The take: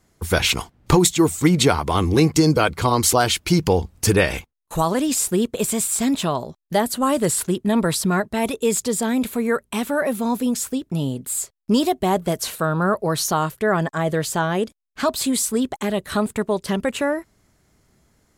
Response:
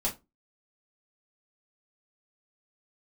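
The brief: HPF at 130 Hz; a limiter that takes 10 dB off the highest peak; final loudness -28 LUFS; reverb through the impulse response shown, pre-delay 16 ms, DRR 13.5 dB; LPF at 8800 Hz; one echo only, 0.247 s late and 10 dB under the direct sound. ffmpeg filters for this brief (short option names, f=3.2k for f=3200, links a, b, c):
-filter_complex "[0:a]highpass=130,lowpass=8.8k,alimiter=limit=-12dB:level=0:latency=1,aecho=1:1:247:0.316,asplit=2[a][b];[1:a]atrim=start_sample=2205,adelay=16[c];[b][c]afir=irnorm=-1:irlink=0,volume=-19.5dB[d];[a][d]amix=inputs=2:normalize=0,volume=-5.5dB"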